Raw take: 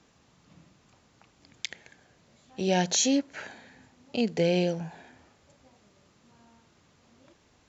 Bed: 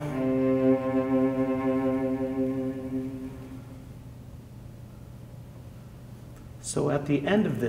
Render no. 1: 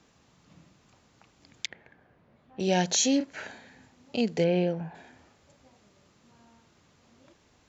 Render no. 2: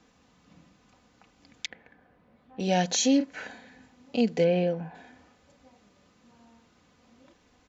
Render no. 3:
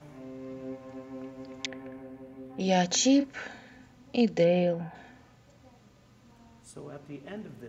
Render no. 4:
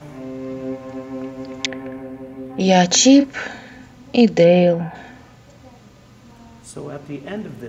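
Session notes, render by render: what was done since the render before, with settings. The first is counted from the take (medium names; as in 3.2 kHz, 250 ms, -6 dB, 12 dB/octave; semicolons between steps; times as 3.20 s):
1.66–2.60 s: low-pass 1.8 kHz; 3.17–3.59 s: doubling 34 ms -7.5 dB; 4.44–4.95 s: low-pass 2.3 kHz
treble shelf 6.8 kHz -7 dB; comb 4 ms, depth 45%
add bed -17.5 dB
trim +12 dB; peak limiter -2 dBFS, peak gain reduction 2 dB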